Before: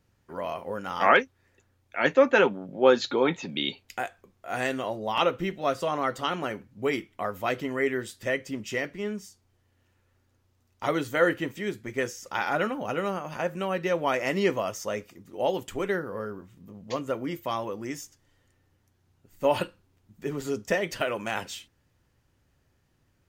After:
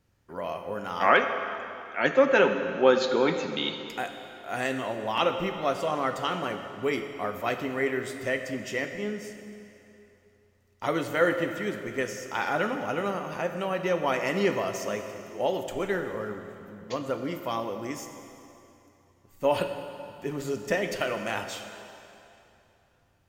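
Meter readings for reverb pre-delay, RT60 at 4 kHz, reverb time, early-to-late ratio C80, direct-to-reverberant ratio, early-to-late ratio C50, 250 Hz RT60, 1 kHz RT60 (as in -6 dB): 25 ms, 2.5 s, 2.9 s, 8.0 dB, 6.5 dB, 7.0 dB, 2.6 s, 3.0 s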